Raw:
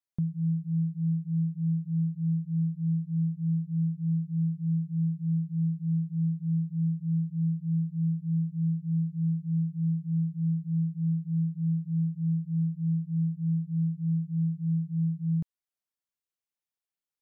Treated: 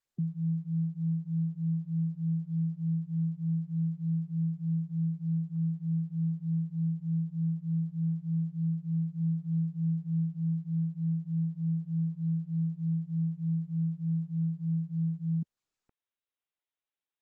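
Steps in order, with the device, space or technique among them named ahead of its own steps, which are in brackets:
0:09.20–0:10.37: dynamic equaliser 290 Hz, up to +6 dB, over −50 dBFS, Q 2.3
noise-suppressed video call (high-pass filter 160 Hz 24 dB per octave; gate on every frequency bin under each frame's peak −25 dB strong; Opus 16 kbit/s 48,000 Hz)

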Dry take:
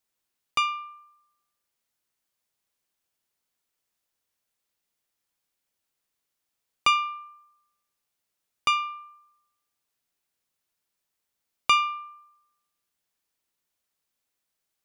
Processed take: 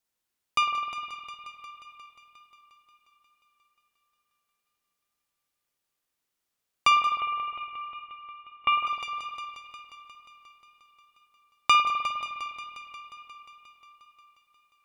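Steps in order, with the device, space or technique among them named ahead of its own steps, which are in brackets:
multi-head tape echo (echo machine with several playback heads 178 ms, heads first and second, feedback 68%, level −15.5 dB; tape wow and flutter 15 cents)
spring reverb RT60 2.8 s, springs 51 ms, chirp 55 ms, DRR 6 dB
dynamic equaliser 700 Hz, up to +6 dB, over −43 dBFS, Q 1.2
0:07.20–0:08.87: Chebyshev low-pass filter 3,200 Hz, order 5
level −1.5 dB

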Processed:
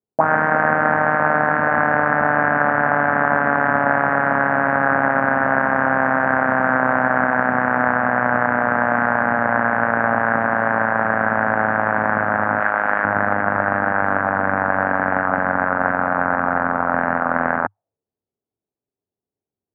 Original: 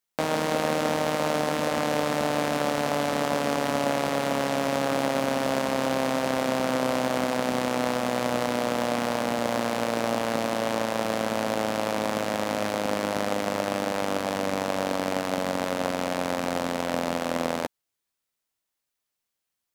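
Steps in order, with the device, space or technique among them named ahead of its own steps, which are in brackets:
envelope filter bass rig (envelope-controlled low-pass 400–1,600 Hz up, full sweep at −22.5 dBFS; loudspeaker in its box 72–2,000 Hz, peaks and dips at 100 Hz +8 dB, 350 Hz −7 dB, 500 Hz −6 dB, 780 Hz +4 dB, 1,600 Hz +3 dB)
0:12.60–0:13.05: RIAA equalisation recording
level +5.5 dB

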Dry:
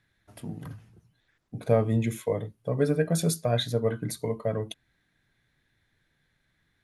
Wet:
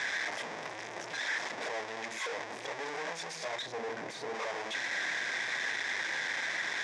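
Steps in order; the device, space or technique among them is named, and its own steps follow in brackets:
home computer beeper (sign of each sample alone; loudspeaker in its box 680–5,600 Hz, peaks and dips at 1,300 Hz −8 dB, 1,900 Hz +4 dB, 2,900 Hz −8 dB, 4,300 Hz −9 dB)
0:03.62–0:04.35: tilt shelving filter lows +5.5 dB, about 770 Hz

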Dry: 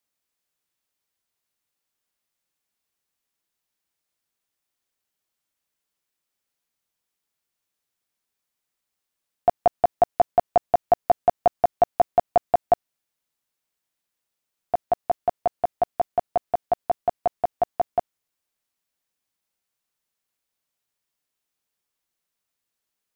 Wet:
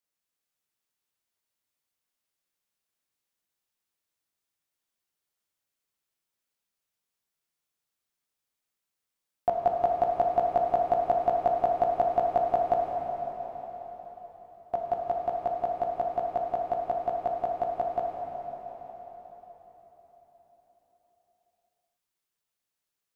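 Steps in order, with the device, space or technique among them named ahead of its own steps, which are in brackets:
cathedral (convolution reverb RT60 4.7 s, pre-delay 9 ms, DRR −1 dB)
level −7 dB

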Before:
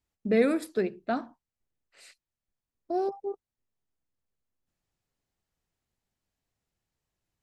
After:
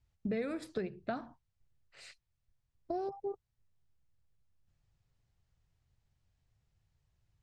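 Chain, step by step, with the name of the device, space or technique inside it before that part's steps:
jukebox (low-pass filter 6,800 Hz 12 dB per octave; low shelf with overshoot 170 Hz +11 dB, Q 1.5; downward compressor 5 to 1, threshold −35 dBFS, peak gain reduction 14.5 dB)
level +1 dB

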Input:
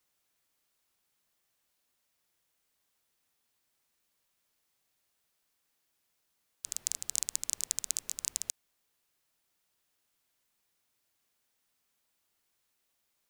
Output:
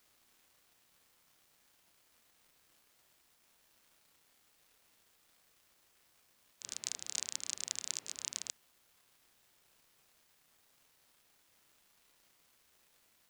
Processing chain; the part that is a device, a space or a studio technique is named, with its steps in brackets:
78 rpm shellac record (band-pass filter 130–5,000 Hz; surface crackle 380 per second −59 dBFS; white noise bed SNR 22 dB)
backwards echo 31 ms −6.5 dB
level +1 dB

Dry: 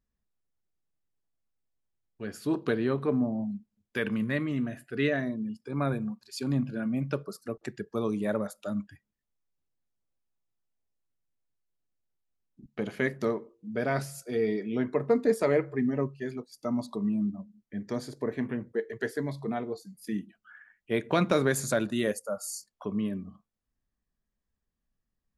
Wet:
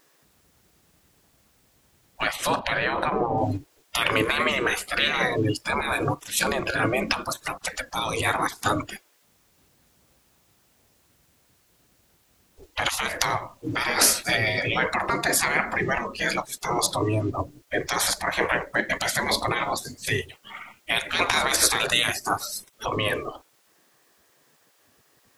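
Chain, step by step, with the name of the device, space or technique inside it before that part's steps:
loud club master (downward compressor 2 to 1, threshold −30 dBFS, peak gain reduction 6.5 dB; hard clipping −17 dBFS, distortion −49 dB; boost into a limiter +29 dB)
gate on every frequency bin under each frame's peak −20 dB weak
0:02.59–0:03.38: bass and treble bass +1 dB, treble −14 dB
level +1.5 dB

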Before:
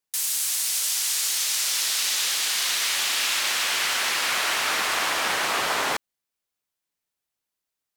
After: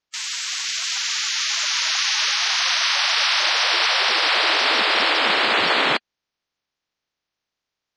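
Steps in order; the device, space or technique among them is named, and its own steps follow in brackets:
clip after many re-uploads (low-pass filter 5,300 Hz 24 dB per octave; spectral magnitudes quantised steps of 30 dB)
level +7 dB

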